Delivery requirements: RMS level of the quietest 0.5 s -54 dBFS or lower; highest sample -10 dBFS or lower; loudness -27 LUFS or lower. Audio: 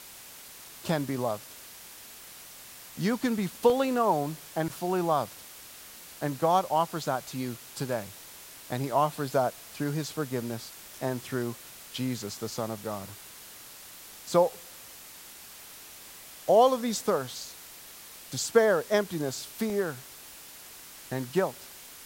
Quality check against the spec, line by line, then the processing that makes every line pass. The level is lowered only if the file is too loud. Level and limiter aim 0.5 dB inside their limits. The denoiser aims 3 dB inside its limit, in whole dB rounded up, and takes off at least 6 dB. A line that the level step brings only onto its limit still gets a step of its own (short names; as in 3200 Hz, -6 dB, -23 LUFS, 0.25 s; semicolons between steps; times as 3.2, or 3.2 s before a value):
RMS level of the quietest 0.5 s -48 dBFS: fail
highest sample -9.0 dBFS: fail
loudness -29.0 LUFS: OK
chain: denoiser 9 dB, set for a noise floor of -48 dBFS; limiter -10.5 dBFS